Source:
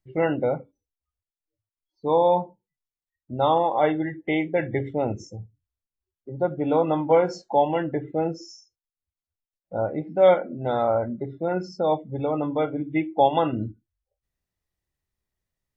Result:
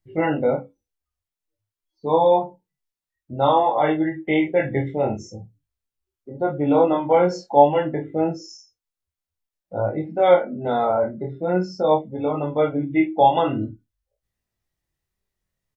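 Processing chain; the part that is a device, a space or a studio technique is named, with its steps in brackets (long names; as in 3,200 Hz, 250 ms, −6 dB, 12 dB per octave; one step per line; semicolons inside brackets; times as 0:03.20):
double-tracked vocal (double-tracking delay 28 ms −6 dB; chorus effect 0.49 Hz, delay 18.5 ms, depth 4.4 ms)
level +5 dB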